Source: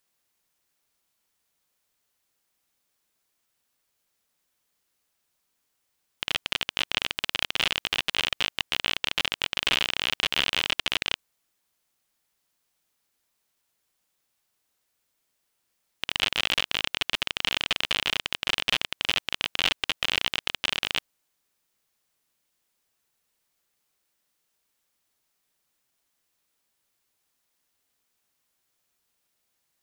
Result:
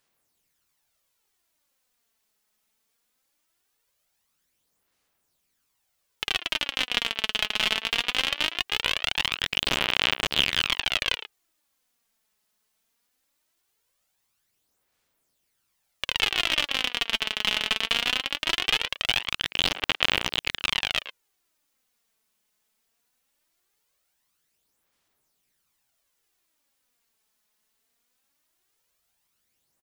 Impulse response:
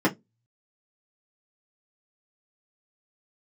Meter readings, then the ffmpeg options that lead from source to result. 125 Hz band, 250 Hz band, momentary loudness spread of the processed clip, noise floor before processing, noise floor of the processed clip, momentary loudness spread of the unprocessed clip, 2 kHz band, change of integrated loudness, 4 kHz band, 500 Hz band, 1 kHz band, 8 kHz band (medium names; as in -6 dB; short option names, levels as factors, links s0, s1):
+2.0 dB, +2.5 dB, 4 LU, -77 dBFS, -75 dBFS, 4 LU, +1.5 dB, +1.5 dB, +1.5 dB, +2.0 dB, +2.0 dB, +1.0 dB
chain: -filter_complex "[0:a]asplit=2[s0][s1];[s1]adelay=110,highpass=300,lowpass=3400,asoftclip=type=hard:threshold=0.282,volume=0.282[s2];[s0][s2]amix=inputs=2:normalize=0,aphaser=in_gain=1:out_gain=1:delay=4.7:decay=0.49:speed=0.2:type=sinusoidal"